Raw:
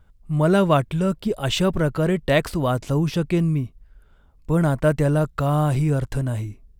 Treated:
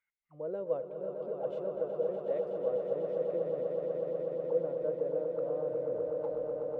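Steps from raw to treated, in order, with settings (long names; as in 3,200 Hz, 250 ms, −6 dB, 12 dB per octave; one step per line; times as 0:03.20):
turntable brake at the end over 1.05 s
envelope filter 500–2,200 Hz, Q 19, down, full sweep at −20 dBFS
echo that builds up and dies away 123 ms, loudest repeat 8, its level −8.5 dB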